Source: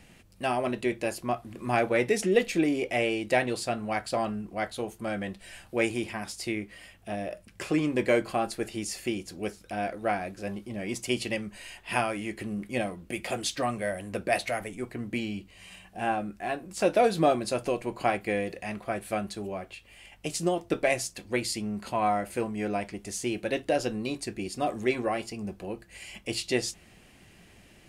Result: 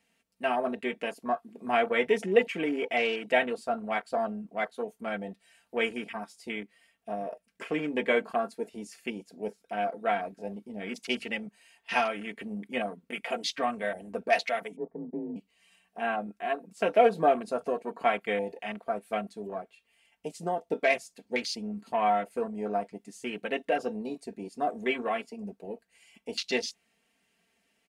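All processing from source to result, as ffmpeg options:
-filter_complex "[0:a]asettb=1/sr,asplit=3[a][b][c];[a]atrim=end=14.764[d];[b]atrim=start=14.76:end=15.36,asetpts=PTS-STARTPTS,afade=t=in:d=0.004:c=qsin,afade=t=out:st=0.596:d=0.004:c=qsin,lowpass=f=1k:w=0.5412,lowpass=f=1k:w=1.3066,afreqshift=43[e];[c]atrim=start=15.356[f];[d][e]acrossfade=d=0.004:c1=hsin:c2=qsin[g];[g][f]acrossfade=d=0.004:c1=qsin:c2=hsin,highpass=f=440:p=1,afwtdn=0.0141,aecho=1:1:4.4:0.74"

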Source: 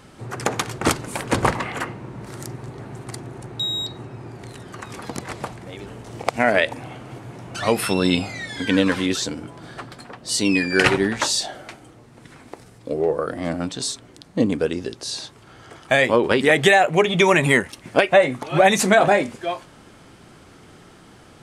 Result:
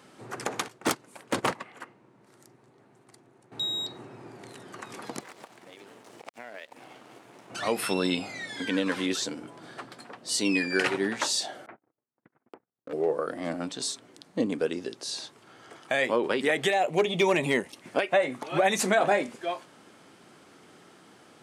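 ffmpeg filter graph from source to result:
-filter_complex "[0:a]asettb=1/sr,asplit=3[a][b][c];[a]atrim=end=0.684[d];[b]atrim=start=0.68:end=3.52,asetpts=PTS-STARTPTS,afade=t=in:d=0.004:c=qsin,afade=t=out:st=2.836:d=0.004:c=qsin,agate=range=-15dB:threshold=-24dB:ratio=16:release=100:detection=peak,aeval=exprs='0.335*(abs(mod(val(0)/0.335+3,4)-2)-1)':c=same[e];[c]atrim=start=3.516[f];[d][e]acrossfade=d=0.004:c1=hsin:c2=qsin[g];[g][f]acrossfade=d=0.004:c1=qsin:c2=hsin,asettb=1/sr,asplit=3[h][i][j];[h]atrim=end=5.204[k];[i]atrim=start=5.2:end=7.5,asetpts=PTS-STARTPTS,afade=t=in:d=0.004:c=qsin,afade=t=out:st=2.296:d=0.004:c=qsin,highpass=f=290:p=1,acompressor=threshold=-35dB:ratio=4:attack=3.2:release=140:knee=1:detection=peak,aeval=exprs='sgn(val(0))*max(abs(val(0))-0.00422,0)':c=same[l];[j]atrim=start=7.496[m];[k][l]acrossfade=d=0.004:c1=hsin:c2=qsin[n];[n][m]acrossfade=d=0.004:c1=qsin:c2=hsin,asettb=1/sr,asplit=3[o][p][q];[o]atrim=end=11.664[r];[p]atrim=start=11.66:end=12.93,asetpts=PTS-STARTPTS,afade=t=in:d=0.004:c=qsin,afade=t=out:st=1.266:d=0.004:c=qsin,lowpass=f=1.8k:w=0.5412,lowpass=f=1.8k:w=1.3066,agate=range=-41dB:threshold=-43dB:ratio=16:release=100:detection=peak,asoftclip=type=hard:threshold=-28dB[s];[q]atrim=start=12.926[t];[r][s]acrossfade=d=0.004:c1=hsin:c2=qsin[u];[u][t]acrossfade=d=0.004:c1=qsin:c2=hsin,asettb=1/sr,asplit=3[v][w][x];[v]atrim=end=16.704[y];[w]atrim=start=16.7:end=17.76,asetpts=PTS-STARTPTS,afade=t=in:d=0.004:c=qsin,afade=t=out:st=1.056:d=0.004:c=qsin,acrossover=split=5000[z][aa];[aa]acompressor=threshold=-38dB:ratio=4:attack=1:release=60[ab];[z][ab]amix=inputs=2:normalize=0,equalizer=f=1.5k:t=o:w=0.77:g=-10.5,asoftclip=type=hard:threshold=-9dB[ac];[x]atrim=start=17.756[ad];[y][ac]acrossfade=d=0.004:c1=hsin:c2=qsin[ae];[ae][ad]acrossfade=d=0.004:c1=qsin:c2=hsin,alimiter=limit=-7dB:level=0:latency=1:release=209,highpass=210,volume=-5.5dB"

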